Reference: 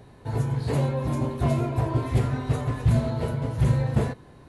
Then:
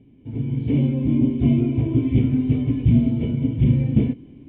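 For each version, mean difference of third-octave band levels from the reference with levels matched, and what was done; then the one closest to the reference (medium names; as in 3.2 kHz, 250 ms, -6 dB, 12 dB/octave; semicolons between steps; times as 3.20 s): 9.5 dB: cascade formant filter i; level rider gain up to 8 dB; trim +7 dB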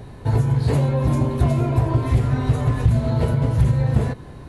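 2.0 dB: compression, threshold -26 dBFS, peak gain reduction 10.5 dB; bass shelf 120 Hz +8 dB; trim +8 dB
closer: second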